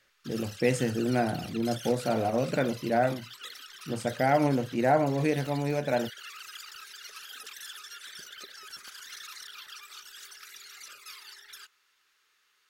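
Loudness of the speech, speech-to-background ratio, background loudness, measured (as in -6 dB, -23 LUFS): -28.5 LUFS, 15.0 dB, -43.5 LUFS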